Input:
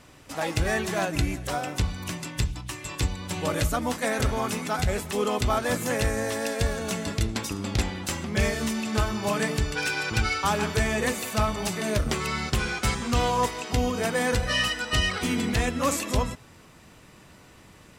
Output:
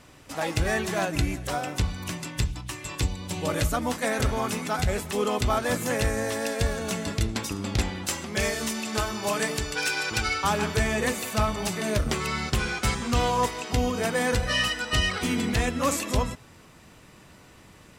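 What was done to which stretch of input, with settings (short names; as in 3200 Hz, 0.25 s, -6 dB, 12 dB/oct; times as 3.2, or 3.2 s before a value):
3.02–3.49 bell 1500 Hz -6 dB 1.1 oct
8.08–10.28 tone controls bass -7 dB, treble +4 dB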